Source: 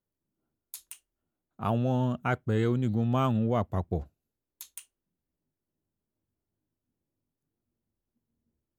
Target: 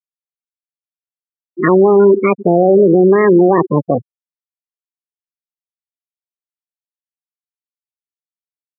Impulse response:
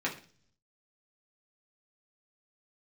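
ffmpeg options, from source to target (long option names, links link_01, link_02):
-filter_complex "[0:a]equalizer=frequency=280:width_type=o:width=0.95:gain=12,asplit=2[link_01][link_02];[1:a]atrim=start_sample=2205,highshelf=frequency=2600:gain=-11[link_03];[link_02][link_03]afir=irnorm=-1:irlink=0,volume=-22dB[link_04];[link_01][link_04]amix=inputs=2:normalize=0,asetrate=70004,aresample=44100,atempo=0.629961,asplit=2[link_05][link_06];[link_06]adelay=99,lowpass=frequency=1300:poles=1,volume=-16dB,asplit=2[link_07][link_08];[link_08]adelay=99,lowpass=frequency=1300:poles=1,volume=0.49,asplit=2[link_09][link_10];[link_10]adelay=99,lowpass=frequency=1300:poles=1,volume=0.49,asplit=2[link_11][link_12];[link_12]adelay=99,lowpass=frequency=1300:poles=1,volume=0.49[link_13];[link_05][link_07][link_09][link_11][link_13]amix=inputs=5:normalize=0,afftfilt=real='re*gte(hypot(re,im),0.126)':imag='im*gte(hypot(re,im),0.126)':win_size=1024:overlap=0.75,highpass=150,alimiter=level_in=16.5dB:limit=-1dB:release=50:level=0:latency=1,volume=-1dB"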